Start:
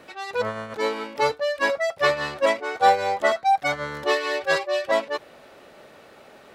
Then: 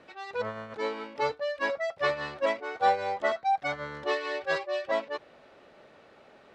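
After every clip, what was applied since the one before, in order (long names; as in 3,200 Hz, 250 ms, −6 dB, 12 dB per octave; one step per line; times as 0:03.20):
high-frequency loss of the air 91 metres
level −6.5 dB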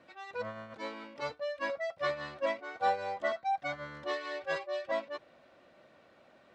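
notch comb filter 430 Hz
level −4.5 dB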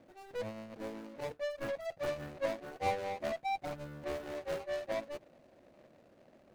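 running median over 41 samples
in parallel at −11 dB: wave folding −39 dBFS
on the sum: level +1 dB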